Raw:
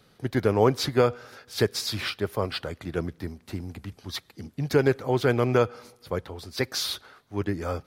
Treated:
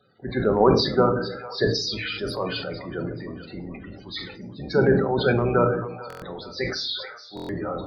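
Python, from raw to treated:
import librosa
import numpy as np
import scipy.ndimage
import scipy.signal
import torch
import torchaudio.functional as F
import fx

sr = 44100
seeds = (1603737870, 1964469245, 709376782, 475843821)

p1 = fx.octave_divider(x, sr, octaves=1, level_db=-1.0)
p2 = fx.echo_split(p1, sr, split_hz=530.0, low_ms=147, high_ms=437, feedback_pct=52, wet_db=-16.0)
p3 = fx.level_steps(p2, sr, step_db=19)
p4 = p2 + (p3 * librosa.db_to_amplitude(-0.5))
p5 = fx.highpass(p4, sr, hz=400.0, slope=6)
p6 = fx.spec_topn(p5, sr, count=32)
p7 = fx.transient(p6, sr, attack_db=-2, sustain_db=6)
p8 = fx.room_shoebox(p7, sr, seeds[0], volume_m3=420.0, walls='furnished', distance_m=1.1)
p9 = fx.buffer_glitch(p8, sr, at_s=(6.08, 7.35), block=1024, repeats=5)
y = fx.sustainer(p9, sr, db_per_s=61.0)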